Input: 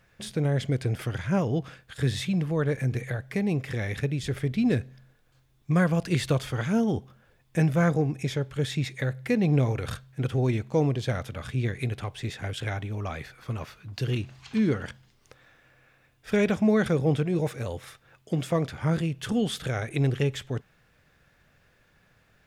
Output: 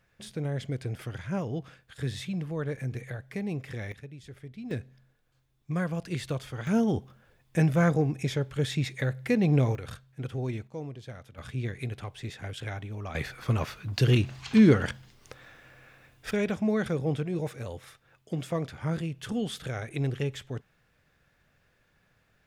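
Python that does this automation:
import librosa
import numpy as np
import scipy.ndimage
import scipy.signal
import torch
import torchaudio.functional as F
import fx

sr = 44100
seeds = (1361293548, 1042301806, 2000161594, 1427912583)

y = fx.gain(x, sr, db=fx.steps((0.0, -6.5), (3.92, -16.5), (4.71, -7.5), (6.67, -0.5), (9.75, -7.5), (10.67, -14.5), (11.38, -5.0), (13.15, 6.0), (16.31, -5.0)))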